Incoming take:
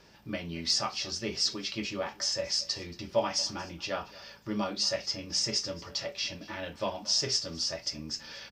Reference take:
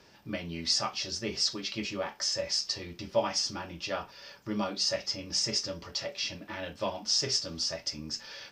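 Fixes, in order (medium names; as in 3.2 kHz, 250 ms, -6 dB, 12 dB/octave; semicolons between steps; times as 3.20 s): clip repair -15.5 dBFS; de-hum 54.7 Hz, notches 4; inverse comb 228 ms -20.5 dB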